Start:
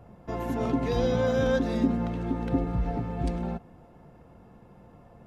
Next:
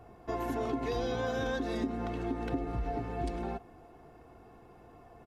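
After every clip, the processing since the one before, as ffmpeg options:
ffmpeg -i in.wav -af "lowshelf=frequency=230:gain=-6.5,aecho=1:1:2.7:0.56,acompressor=threshold=-30dB:ratio=4" out.wav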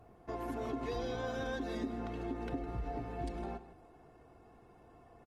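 ffmpeg -i in.wav -af "aecho=1:1:158:0.188,volume=-5dB" -ar 48000 -c:a libopus -b:a 24k out.opus

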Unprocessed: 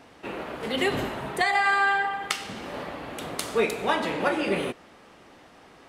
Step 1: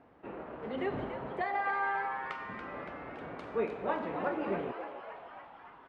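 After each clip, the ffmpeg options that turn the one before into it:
ffmpeg -i in.wav -filter_complex "[0:a]lowpass=1400,asplit=9[link_01][link_02][link_03][link_04][link_05][link_06][link_07][link_08][link_09];[link_02]adelay=283,afreqshift=130,volume=-9.5dB[link_10];[link_03]adelay=566,afreqshift=260,volume=-13.5dB[link_11];[link_04]adelay=849,afreqshift=390,volume=-17.5dB[link_12];[link_05]adelay=1132,afreqshift=520,volume=-21.5dB[link_13];[link_06]adelay=1415,afreqshift=650,volume=-25.6dB[link_14];[link_07]adelay=1698,afreqshift=780,volume=-29.6dB[link_15];[link_08]adelay=1981,afreqshift=910,volume=-33.6dB[link_16];[link_09]adelay=2264,afreqshift=1040,volume=-37.6dB[link_17];[link_01][link_10][link_11][link_12][link_13][link_14][link_15][link_16][link_17]amix=inputs=9:normalize=0,volume=-8dB" out.wav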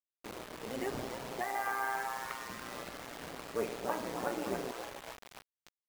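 ffmpeg -i in.wav -af "acrusher=bits=6:mix=0:aa=0.000001,tremolo=f=120:d=0.667" out.wav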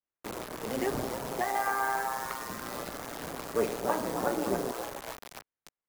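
ffmpeg -i in.wav -filter_complex "[0:a]acrossover=split=390|1200|2400[link_01][link_02][link_03][link_04];[link_04]acrusher=bits=7:mix=0:aa=0.000001[link_05];[link_01][link_02][link_03][link_05]amix=inputs=4:normalize=0,adynamicequalizer=threshold=0.00282:dfrequency=2400:dqfactor=1:tfrequency=2400:tqfactor=1:attack=5:release=100:ratio=0.375:range=3:mode=cutabove:tftype=bell,volume=6.5dB" out.wav

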